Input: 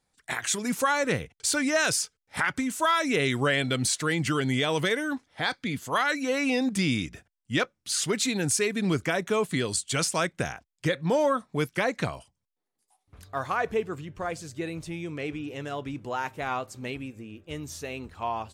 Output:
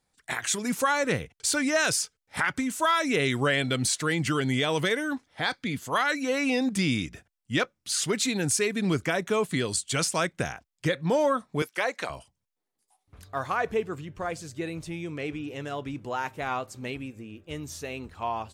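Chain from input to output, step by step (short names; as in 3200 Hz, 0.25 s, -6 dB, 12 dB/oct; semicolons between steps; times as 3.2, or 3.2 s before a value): 11.62–12.1 HPF 480 Hz 12 dB/oct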